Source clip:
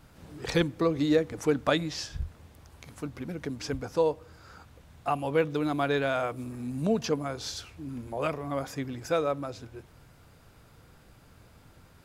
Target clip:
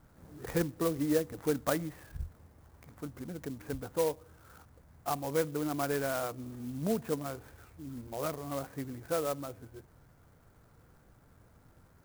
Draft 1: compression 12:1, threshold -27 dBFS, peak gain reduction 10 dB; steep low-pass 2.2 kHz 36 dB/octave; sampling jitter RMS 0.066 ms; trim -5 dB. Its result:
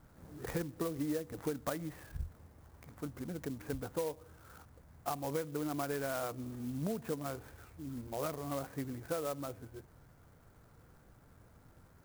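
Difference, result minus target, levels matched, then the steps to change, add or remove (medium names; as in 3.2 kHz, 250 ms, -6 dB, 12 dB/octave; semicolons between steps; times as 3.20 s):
compression: peak gain reduction +10 dB
remove: compression 12:1, threshold -27 dBFS, peak gain reduction 10 dB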